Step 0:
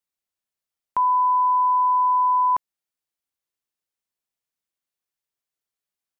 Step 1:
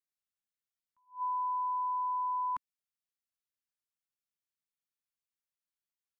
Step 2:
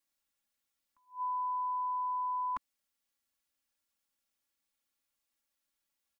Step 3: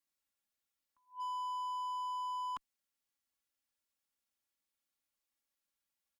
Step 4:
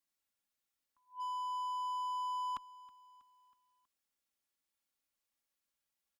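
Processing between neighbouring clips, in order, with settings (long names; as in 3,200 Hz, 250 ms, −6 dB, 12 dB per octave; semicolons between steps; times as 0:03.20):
flat-topped bell 540 Hz −12.5 dB; level that may rise only so fast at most 240 dB per second; level −9 dB
comb filter 3.6 ms, depth 81%; in parallel at +1 dB: brickwall limiter −39.5 dBFS, peak gain reduction 11 dB
gain into a clipping stage and back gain 34.5 dB; harmonic generator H 3 −25 dB, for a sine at −34.5 dBFS; level −3 dB
repeating echo 321 ms, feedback 53%, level −22 dB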